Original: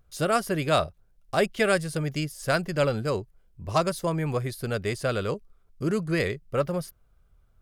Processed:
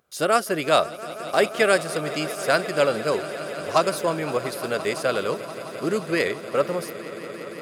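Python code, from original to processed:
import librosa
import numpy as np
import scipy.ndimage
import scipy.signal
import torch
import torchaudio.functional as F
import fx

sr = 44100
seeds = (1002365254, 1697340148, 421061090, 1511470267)

p1 = scipy.signal.sosfilt(scipy.signal.butter(2, 290.0, 'highpass', fs=sr, output='sos'), x)
p2 = p1 + fx.echo_swell(p1, sr, ms=173, loudest=5, wet_db=-18, dry=0)
y = p2 * librosa.db_to_amplitude(4.5)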